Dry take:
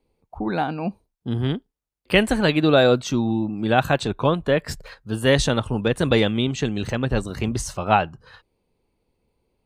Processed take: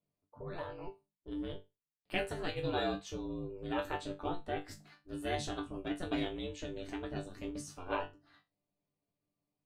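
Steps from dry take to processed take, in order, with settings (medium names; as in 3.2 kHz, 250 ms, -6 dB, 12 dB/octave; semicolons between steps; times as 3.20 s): ring modulator 180 Hz; chord resonator G2 fifth, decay 0.22 s; trim -5 dB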